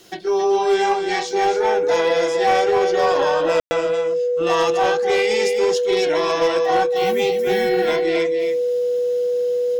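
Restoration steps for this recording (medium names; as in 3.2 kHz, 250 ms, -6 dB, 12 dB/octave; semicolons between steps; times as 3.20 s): clip repair -11 dBFS; band-stop 490 Hz, Q 30; room tone fill 3.60–3.71 s; inverse comb 270 ms -7 dB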